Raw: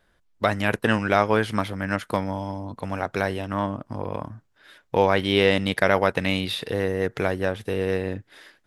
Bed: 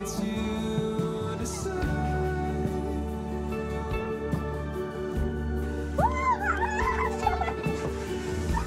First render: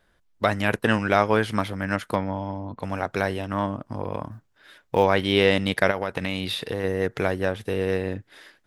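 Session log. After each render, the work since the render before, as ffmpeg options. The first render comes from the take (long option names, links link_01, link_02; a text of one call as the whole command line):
ffmpeg -i in.wav -filter_complex "[0:a]asettb=1/sr,asplit=3[link_01][link_02][link_03];[link_01]atrim=end=2.154[link_04];[link_02]atrim=start=2.15:end=2.8,asetpts=PTS-STARTPTS,afade=type=in:duration=0.004:curve=qsin,afade=type=out:start_time=0.646:duration=0.004:curve=qsin,lowpass=3200[link_05];[link_03]atrim=start=2.796[link_06];[link_04][link_05]acrossfade=duration=0.004:curve1=hsin:curve2=qsin[link_07];[link_07][link_06]acrossfade=duration=0.004:curve1=qsin:curve2=hsin,asettb=1/sr,asplit=3[link_08][link_09][link_10];[link_08]atrim=end=4.314[link_11];[link_09]atrim=start=4.31:end=5.04,asetpts=PTS-STARTPTS,afade=type=in:duration=0.004:curve=qsin,afade=type=out:start_time=0.726:duration=0.004:curve=qsin,acrusher=bits=9:mode=log:mix=0:aa=0.000001[link_12];[link_10]atrim=start=5.036[link_13];[link_11][link_12]acrossfade=duration=0.004:curve1=hsin:curve2=qsin[link_14];[link_14][link_13]acrossfade=duration=0.004:curve1=qsin:curve2=hsin,asplit=3[link_15][link_16][link_17];[link_15]afade=type=out:start_time=5.9:duration=0.02[link_18];[link_16]acompressor=threshold=-22dB:ratio=4:attack=3.2:release=140:knee=1:detection=peak,afade=type=in:start_time=5.9:duration=0.02,afade=type=out:start_time=6.83:duration=0.02[link_19];[link_17]afade=type=in:start_time=6.83:duration=0.02[link_20];[link_18][link_19][link_20]amix=inputs=3:normalize=0" out.wav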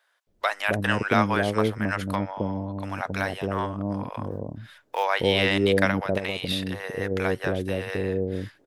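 ffmpeg -i in.wav -filter_complex "[0:a]acrossover=split=610[link_01][link_02];[link_01]adelay=270[link_03];[link_03][link_02]amix=inputs=2:normalize=0" out.wav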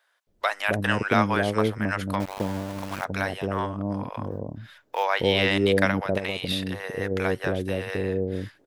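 ffmpeg -i in.wav -filter_complex "[0:a]asettb=1/sr,asplit=3[link_01][link_02][link_03];[link_01]atrim=end=2.204[link_04];[link_02]atrim=start=2.2:end=3.05,asetpts=PTS-STARTPTS,afade=type=in:duration=0.004:curve=qsin,afade=type=out:start_time=0.846:duration=0.004:curve=qsin,aeval=exprs='val(0)*gte(abs(val(0)),0.0266)':channel_layout=same[link_05];[link_03]atrim=start=3.046[link_06];[link_04][link_05]acrossfade=duration=0.004:curve1=hsin:curve2=qsin[link_07];[link_07][link_06]acrossfade=duration=0.004:curve1=qsin:curve2=hsin,asettb=1/sr,asplit=3[link_08][link_09][link_10];[link_08]atrim=end=4.064[link_11];[link_09]atrim=start=4.06:end=5.49,asetpts=PTS-STARTPTS,afade=type=in:duration=0.004:curve=qsin,afade=type=out:start_time=1.426:duration=0.004:curve=qsin,equalizer=frequency=9300:width=4.8:gain=-9[link_12];[link_10]atrim=start=5.486[link_13];[link_11][link_12]acrossfade=duration=0.004:curve1=hsin:curve2=qsin[link_14];[link_14][link_13]acrossfade=duration=0.004:curve1=qsin:curve2=hsin" out.wav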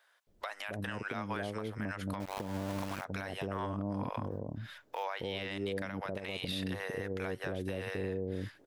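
ffmpeg -i in.wav -af "acompressor=threshold=-26dB:ratio=6,alimiter=level_in=2dB:limit=-24dB:level=0:latency=1:release=289,volume=-2dB" out.wav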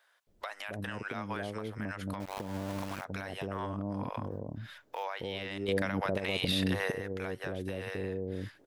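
ffmpeg -i in.wav -filter_complex "[0:a]asettb=1/sr,asplit=3[link_01][link_02][link_03];[link_01]atrim=end=5.684[link_04];[link_02]atrim=start=5.68:end=6.92,asetpts=PTS-STARTPTS,afade=type=in:duration=0.004:curve=qsin,afade=type=out:start_time=1.236:duration=0.004:curve=qsin,acontrast=74[link_05];[link_03]atrim=start=6.916[link_06];[link_04][link_05]acrossfade=duration=0.004:curve1=hsin:curve2=qsin[link_07];[link_07][link_06]acrossfade=duration=0.004:curve1=qsin:curve2=hsin" out.wav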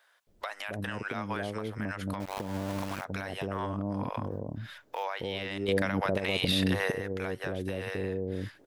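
ffmpeg -i in.wav -af "volume=3dB" out.wav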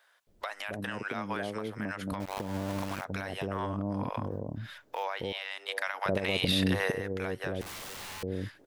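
ffmpeg -i in.wav -filter_complex "[0:a]asettb=1/sr,asplit=3[link_01][link_02][link_03];[link_01]atrim=end=0.744[link_04];[link_02]atrim=start=0.74:end=2.12,asetpts=PTS-STARTPTS,afade=type=in:duration=0.004:curve=qsin,afade=type=out:start_time=1.376:duration=0.004:curve=qsin,highpass=130[link_05];[link_03]atrim=start=2.116[link_06];[link_04][link_05]acrossfade=duration=0.004:curve1=hsin:curve2=qsin[link_07];[link_07][link_06]acrossfade=duration=0.004:curve1=qsin:curve2=hsin,asettb=1/sr,asplit=3[link_08][link_09][link_10];[link_08]atrim=end=5.324[link_11];[link_09]atrim=start=5.32:end=6.06,asetpts=PTS-STARTPTS,afade=type=in:duration=0.004:curve=qsin,afade=type=out:start_time=0.736:duration=0.004:curve=qsin,highpass=frequency=730:width=0.5412,highpass=frequency=730:width=1.3066[link_12];[link_10]atrim=start=6.056[link_13];[link_11][link_12]acrossfade=duration=0.004:curve1=hsin:curve2=qsin[link_14];[link_14][link_13]acrossfade=duration=0.004:curve1=qsin:curve2=hsin,asettb=1/sr,asplit=3[link_15][link_16][link_17];[link_15]atrim=end=7.614[link_18];[link_16]atrim=start=7.61:end=8.23,asetpts=PTS-STARTPTS,afade=type=in:duration=0.004:curve=qsin,afade=type=out:start_time=0.616:duration=0.004:curve=qsin,aeval=exprs='(mod(75*val(0)+1,2)-1)/75':channel_layout=same[link_19];[link_17]atrim=start=8.226[link_20];[link_18][link_19]acrossfade=duration=0.004:curve1=hsin:curve2=qsin[link_21];[link_21][link_20]acrossfade=duration=0.004:curve1=qsin:curve2=hsin" out.wav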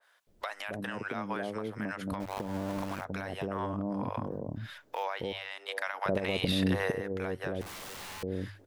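ffmpeg -i in.wav -af "bandreject=frequency=50:width_type=h:width=6,bandreject=frequency=100:width_type=h:width=6,adynamicequalizer=threshold=0.00562:dfrequency=1700:dqfactor=0.7:tfrequency=1700:tqfactor=0.7:attack=5:release=100:ratio=0.375:range=2.5:mode=cutabove:tftype=highshelf" out.wav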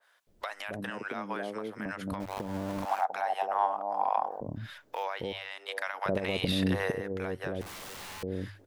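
ffmpeg -i in.wav -filter_complex "[0:a]asettb=1/sr,asplit=3[link_01][link_02][link_03];[link_01]atrim=end=0.904[link_04];[link_02]atrim=start=0.9:end=1.86,asetpts=PTS-STARTPTS,afade=type=in:duration=0.004:curve=qsin,afade=type=out:start_time=0.956:duration=0.004:curve=qsin,highpass=200[link_05];[link_03]atrim=start=1.856[link_06];[link_04][link_05]acrossfade=duration=0.004:curve1=hsin:curve2=qsin[link_07];[link_07][link_06]acrossfade=duration=0.004:curve1=qsin:curve2=hsin,asettb=1/sr,asplit=3[link_08][link_09][link_10];[link_08]atrim=end=2.854[link_11];[link_09]atrim=start=2.85:end=4.41,asetpts=PTS-STARTPTS,afade=type=in:duration=0.004:curve=qsin,afade=type=out:start_time=1.556:duration=0.004:curve=qsin,highpass=frequency=780:width_type=q:width=9.2[link_12];[link_10]atrim=start=4.406[link_13];[link_11][link_12]acrossfade=duration=0.004:curve1=hsin:curve2=qsin[link_14];[link_14][link_13]acrossfade=duration=0.004:curve1=qsin:curve2=hsin" out.wav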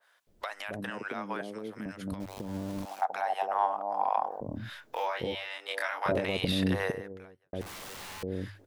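ffmpeg -i in.wav -filter_complex "[0:a]asettb=1/sr,asplit=3[link_01][link_02][link_03];[link_01]atrim=end=1.414[link_04];[link_02]atrim=start=1.41:end=3.02,asetpts=PTS-STARTPTS,afade=type=in:duration=0.004:curve=qsin,afade=type=out:start_time=1.606:duration=0.004:curve=qsin,acrossover=split=470|3000[link_05][link_06][link_07];[link_06]acompressor=threshold=-46dB:ratio=6:attack=3.2:release=140:knee=2.83:detection=peak[link_08];[link_05][link_08][link_07]amix=inputs=3:normalize=0[link_09];[link_03]atrim=start=3.016[link_10];[link_04][link_09]acrossfade=duration=0.004:curve1=hsin:curve2=qsin[link_11];[link_11][link_10]acrossfade=duration=0.004:curve1=qsin:curve2=hsin,asettb=1/sr,asplit=3[link_12][link_13][link_14];[link_12]atrim=end=4.484[link_15];[link_13]atrim=start=4.48:end=6.25,asetpts=PTS-STARTPTS,afade=type=in:duration=0.004:curve=qsin,afade=type=out:start_time=1.766:duration=0.004:curve=qsin,asplit=2[link_16][link_17];[link_17]adelay=24,volume=-2dB[link_18];[link_16][link_18]amix=inputs=2:normalize=0,atrim=end_sample=78057[link_19];[link_14]atrim=start=6.246[link_20];[link_15][link_19]acrossfade=duration=0.004:curve1=hsin:curve2=qsin[link_21];[link_21][link_20]acrossfade=duration=0.004:curve1=qsin:curve2=hsin,asplit=2[link_22][link_23];[link_22]atrim=end=7.53,asetpts=PTS-STARTPTS,afade=type=out:start_time=6.86:duration=0.67:curve=qua[link_24];[link_23]atrim=start=7.53,asetpts=PTS-STARTPTS,afade=type=in:duration=0.004:curve=hsin[link_25];[link_24][link_25]concat=n=2:v=0:a=1" out.wav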